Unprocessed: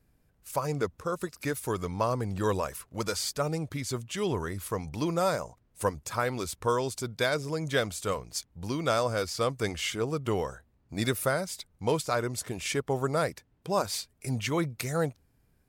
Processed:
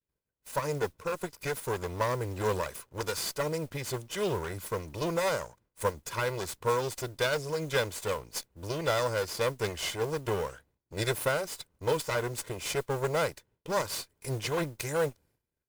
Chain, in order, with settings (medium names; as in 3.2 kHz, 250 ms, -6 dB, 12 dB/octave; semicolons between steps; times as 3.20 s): comb filter that takes the minimum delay 2 ms; expander -57 dBFS; bass shelf 76 Hz -11 dB; modulation noise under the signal 23 dB